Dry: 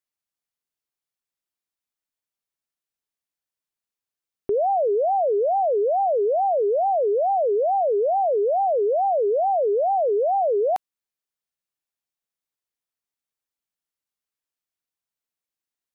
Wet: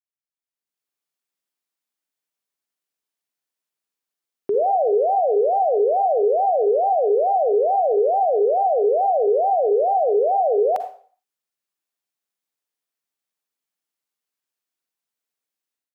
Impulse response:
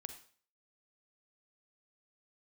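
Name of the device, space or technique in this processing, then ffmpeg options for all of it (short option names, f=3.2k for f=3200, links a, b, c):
far laptop microphone: -filter_complex "[1:a]atrim=start_sample=2205[a];[0:a][a]afir=irnorm=-1:irlink=0,highpass=170,dynaudnorm=f=450:g=3:m=14.5dB,volume=-7.5dB"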